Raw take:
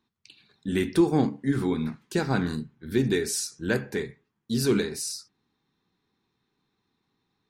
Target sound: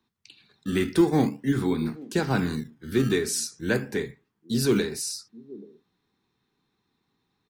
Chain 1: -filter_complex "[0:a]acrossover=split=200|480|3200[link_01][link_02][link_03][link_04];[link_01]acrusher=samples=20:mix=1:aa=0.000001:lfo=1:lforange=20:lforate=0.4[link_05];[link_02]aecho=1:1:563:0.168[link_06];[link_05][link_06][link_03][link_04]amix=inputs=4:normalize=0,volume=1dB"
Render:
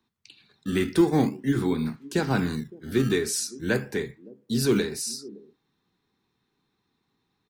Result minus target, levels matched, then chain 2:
echo 266 ms early
-filter_complex "[0:a]acrossover=split=200|480|3200[link_01][link_02][link_03][link_04];[link_01]acrusher=samples=20:mix=1:aa=0.000001:lfo=1:lforange=20:lforate=0.4[link_05];[link_02]aecho=1:1:829:0.168[link_06];[link_05][link_06][link_03][link_04]amix=inputs=4:normalize=0,volume=1dB"

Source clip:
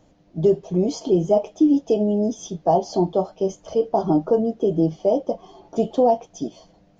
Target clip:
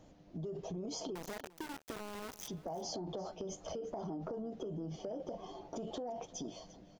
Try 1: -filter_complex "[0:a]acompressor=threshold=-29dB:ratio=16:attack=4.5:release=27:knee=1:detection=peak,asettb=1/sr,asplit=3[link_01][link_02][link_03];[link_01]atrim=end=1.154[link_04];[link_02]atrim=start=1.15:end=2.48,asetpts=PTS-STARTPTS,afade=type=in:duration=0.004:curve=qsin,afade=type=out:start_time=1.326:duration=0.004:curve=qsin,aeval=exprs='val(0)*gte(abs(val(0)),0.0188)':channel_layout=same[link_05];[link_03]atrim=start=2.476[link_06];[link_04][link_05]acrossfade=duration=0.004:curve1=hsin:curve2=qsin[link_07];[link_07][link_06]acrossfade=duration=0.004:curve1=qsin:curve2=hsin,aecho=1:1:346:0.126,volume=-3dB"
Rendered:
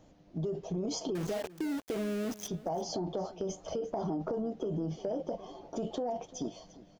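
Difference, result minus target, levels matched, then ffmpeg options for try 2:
downward compressor: peak gain reduction −7.5 dB
-filter_complex "[0:a]acompressor=threshold=-37dB:ratio=16:attack=4.5:release=27:knee=1:detection=peak,asettb=1/sr,asplit=3[link_01][link_02][link_03];[link_01]atrim=end=1.154[link_04];[link_02]atrim=start=1.15:end=2.48,asetpts=PTS-STARTPTS,afade=type=in:duration=0.004:curve=qsin,afade=type=out:start_time=1.326:duration=0.004:curve=qsin,aeval=exprs='val(0)*gte(abs(val(0)),0.0188)':channel_layout=same[link_05];[link_03]atrim=start=2.476[link_06];[link_04][link_05]acrossfade=duration=0.004:curve1=hsin:curve2=qsin[link_07];[link_07][link_06]acrossfade=duration=0.004:curve1=qsin:curve2=hsin,aecho=1:1:346:0.126,volume=-3dB"

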